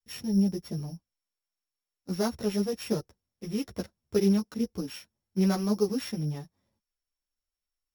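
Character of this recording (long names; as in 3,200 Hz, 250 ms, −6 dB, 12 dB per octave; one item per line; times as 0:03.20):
a buzz of ramps at a fixed pitch in blocks of 8 samples
a shimmering, thickened sound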